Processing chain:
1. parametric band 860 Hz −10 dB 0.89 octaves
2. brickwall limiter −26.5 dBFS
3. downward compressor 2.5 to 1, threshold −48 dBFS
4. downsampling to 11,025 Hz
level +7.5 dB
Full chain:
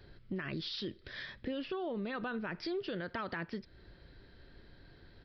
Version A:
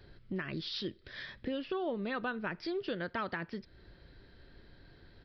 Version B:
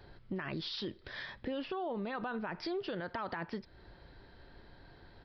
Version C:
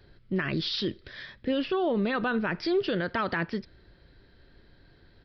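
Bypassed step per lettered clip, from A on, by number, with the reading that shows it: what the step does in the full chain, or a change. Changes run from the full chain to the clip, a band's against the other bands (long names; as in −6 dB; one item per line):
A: 2, average gain reduction 2.5 dB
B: 1, 1 kHz band +4.0 dB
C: 3, average gain reduction 6.0 dB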